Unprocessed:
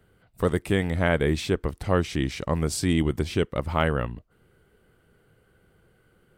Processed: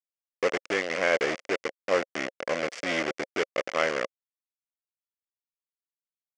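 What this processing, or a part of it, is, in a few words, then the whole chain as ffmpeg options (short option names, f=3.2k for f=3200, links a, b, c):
hand-held game console: -af "acrusher=bits=3:mix=0:aa=0.000001,highpass=430,equalizer=f=540:t=q:w=4:g=8,equalizer=f=900:t=q:w=4:g=-8,equalizer=f=2.1k:t=q:w=4:g=7,equalizer=f=3.9k:t=q:w=4:g=-9,lowpass=f=5.9k:w=0.5412,lowpass=f=5.9k:w=1.3066,volume=-2.5dB"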